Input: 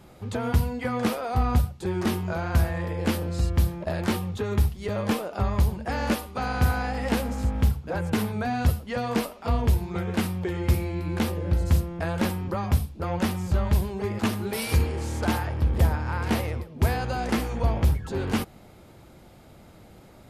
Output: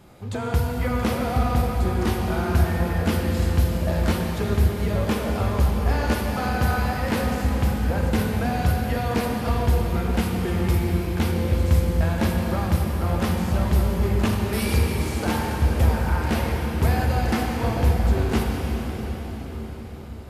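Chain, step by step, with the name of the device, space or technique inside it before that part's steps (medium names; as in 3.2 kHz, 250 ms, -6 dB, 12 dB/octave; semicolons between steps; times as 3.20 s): cathedral (reverberation RT60 5.8 s, pre-delay 22 ms, DRR -0.5 dB)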